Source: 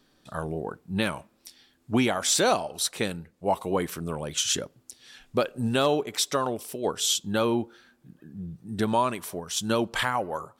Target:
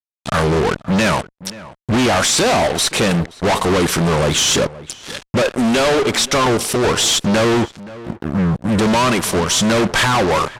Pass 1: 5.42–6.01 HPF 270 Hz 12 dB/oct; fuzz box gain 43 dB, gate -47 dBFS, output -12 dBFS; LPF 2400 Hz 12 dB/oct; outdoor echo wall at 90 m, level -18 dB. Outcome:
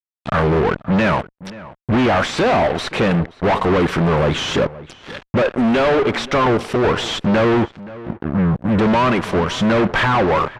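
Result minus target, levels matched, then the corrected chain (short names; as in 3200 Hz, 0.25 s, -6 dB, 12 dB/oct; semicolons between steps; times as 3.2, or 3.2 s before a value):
8000 Hz band -16.0 dB
5.42–6.01 HPF 270 Hz 12 dB/oct; fuzz box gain 43 dB, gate -47 dBFS, output -12 dBFS; LPF 8600 Hz 12 dB/oct; outdoor echo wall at 90 m, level -18 dB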